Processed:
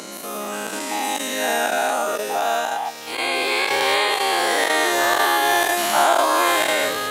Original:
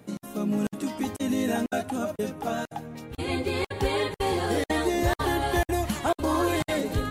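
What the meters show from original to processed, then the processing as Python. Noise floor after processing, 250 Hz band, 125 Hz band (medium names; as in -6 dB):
-34 dBFS, -4.0 dB, under -15 dB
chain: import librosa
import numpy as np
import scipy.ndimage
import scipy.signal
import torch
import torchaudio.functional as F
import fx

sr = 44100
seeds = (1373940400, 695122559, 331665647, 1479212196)

y = fx.spec_dilate(x, sr, span_ms=240)
y = scipy.signal.sosfilt(scipy.signal.butter(2, 690.0, 'highpass', fs=sr, output='sos'), y)
y = F.gain(torch.from_numpy(y), 6.0).numpy()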